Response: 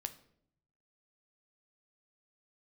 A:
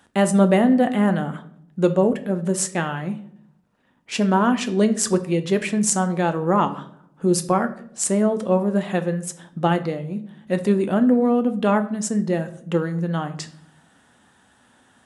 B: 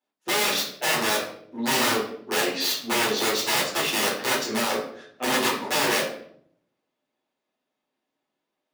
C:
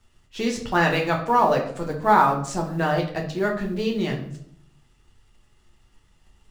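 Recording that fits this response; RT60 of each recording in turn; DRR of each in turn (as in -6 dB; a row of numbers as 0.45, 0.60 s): A; 0.65, 0.65, 0.65 s; 8.5, -10.0, -0.5 dB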